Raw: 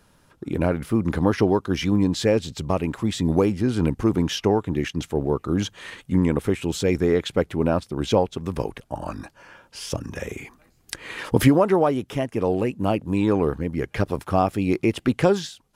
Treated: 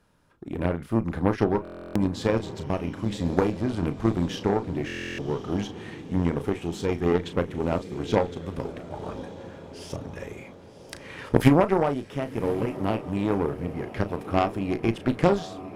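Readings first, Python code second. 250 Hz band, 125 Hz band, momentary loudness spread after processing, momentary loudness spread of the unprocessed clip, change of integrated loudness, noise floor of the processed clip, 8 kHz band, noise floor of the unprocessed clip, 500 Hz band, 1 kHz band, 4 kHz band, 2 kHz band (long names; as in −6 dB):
−4.0 dB, −3.5 dB, 15 LU, 13 LU, −4.0 dB, −46 dBFS, −9.5 dB, −60 dBFS, −4.0 dB, −2.5 dB, −7.0 dB, −3.0 dB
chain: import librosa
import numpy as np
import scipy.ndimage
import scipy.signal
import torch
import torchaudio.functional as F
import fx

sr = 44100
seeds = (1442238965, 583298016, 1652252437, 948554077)

y = fx.high_shelf(x, sr, hz=3800.0, db=-6.5)
y = fx.doubler(y, sr, ms=35.0, db=-9.0)
y = fx.echo_diffused(y, sr, ms=1099, feedback_pct=53, wet_db=-12)
y = fx.cheby_harmonics(y, sr, harmonics=(3, 4), levels_db=(-14, -21), full_scale_db=-4.0)
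y = fx.buffer_glitch(y, sr, at_s=(1.63, 4.86), block=1024, repeats=13)
y = y * librosa.db_to_amplitude(1.5)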